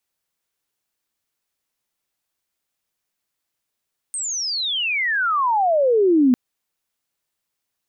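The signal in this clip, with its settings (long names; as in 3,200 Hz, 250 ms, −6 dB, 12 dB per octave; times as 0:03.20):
glide logarithmic 8,700 Hz → 240 Hz −23.5 dBFS → −11 dBFS 2.20 s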